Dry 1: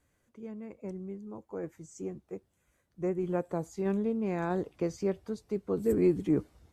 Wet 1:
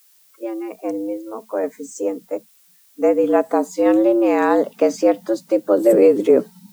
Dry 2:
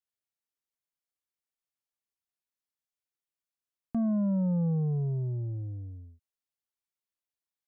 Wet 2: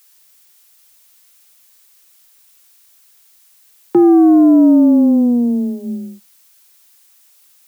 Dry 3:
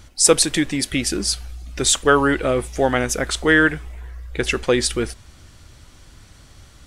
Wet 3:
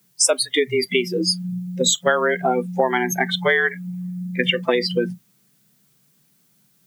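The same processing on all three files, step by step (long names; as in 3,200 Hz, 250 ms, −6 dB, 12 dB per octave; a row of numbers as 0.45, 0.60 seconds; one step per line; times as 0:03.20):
mains-hum notches 50/100 Hz
noise reduction from a noise print of the clip's start 29 dB
downward compressor 6 to 1, threshold −23 dBFS
frequency shifter +120 Hz
background noise blue −70 dBFS
normalise the peak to −3 dBFS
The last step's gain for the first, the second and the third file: +15.5, +19.0, +7.5 decibels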